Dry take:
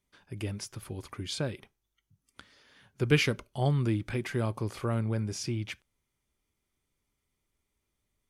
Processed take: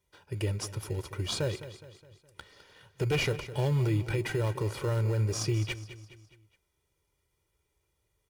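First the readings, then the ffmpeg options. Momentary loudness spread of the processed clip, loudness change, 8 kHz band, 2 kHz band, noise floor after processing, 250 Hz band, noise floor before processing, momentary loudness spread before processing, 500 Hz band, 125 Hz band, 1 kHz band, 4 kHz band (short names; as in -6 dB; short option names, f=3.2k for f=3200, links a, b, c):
13 LU, +0.5 dB, +2.5 dB, -1.5 dB, -78 dBFS, -3.0 dB, -83 dBFS, 15 LU, +1.5 dB, +2.0 dB, -1.0 dB, +0.5 dB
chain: -filter_complex "[0:a]aecho=1:1:2.1:0.89,acrossover=split=4200[a][b];[a]asoftclip=type=hard:threshold=-18.5dB[c];[c][b]amix=inputs=2:normalize=0,highpass=48,asplit=2[d][e];[e]acrusher=samples=19:mix=1:aa=0.000001,volume=-9dB[f];[d][f]amix=inputs=2:normalize=0,alimiter=limit=-21dB:level=0:latency=1:release=40,aecho=1:1:208|416|624|832:0.2|0.0938|0.0441|0.0207"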